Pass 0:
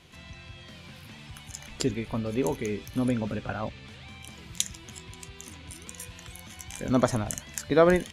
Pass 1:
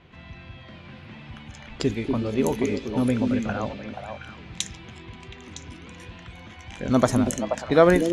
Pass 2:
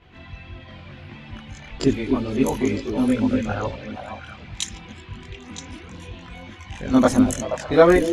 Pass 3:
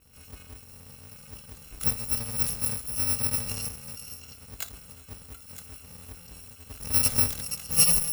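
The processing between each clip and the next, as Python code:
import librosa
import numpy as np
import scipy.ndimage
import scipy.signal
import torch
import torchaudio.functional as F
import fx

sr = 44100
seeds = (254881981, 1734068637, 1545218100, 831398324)

y1 = fx.env_lowpass(x, sr, base_hz=2100.0, full_db=-23.0)
y1 = fx.echo_stepped(y1, sr, ms=240, hz=280.0, octaves=1.4, feedback_pct=70, wet_db=-1.0)
y1 = y1 * 10.0 ** (3.5 / 20.0)
y2 = fx.chorus_voices(y1, sr, voices=4, hz=0.65, base_ms=21, depth_ms=2.1, mix_pct=60)
y2 = y2 * 10.0 ** (5.0 / 20.0)
y3 = fx.bit_reversed(y2, sr, seeds[0], block=128)
y3 = y3 * 10.0 ** (-7.5 / 20.0)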